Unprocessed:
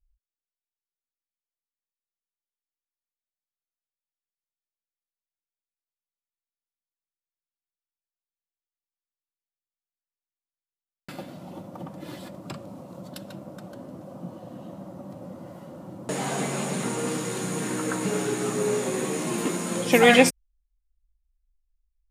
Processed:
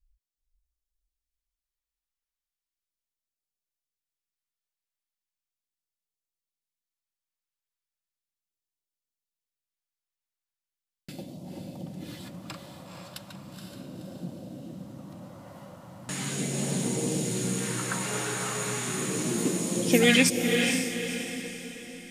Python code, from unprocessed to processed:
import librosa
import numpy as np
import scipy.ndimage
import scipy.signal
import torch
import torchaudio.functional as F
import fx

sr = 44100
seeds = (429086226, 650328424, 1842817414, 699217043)

y = fx.phaser_stages(x, sr, stages=2, low_hz=250.0, high_hz=1500.0, hz=0.37, feedback_pct=25)
y = fx.echo_diffused(y, sr, ms=489, feedback_pct=45, wet_db=-4.5)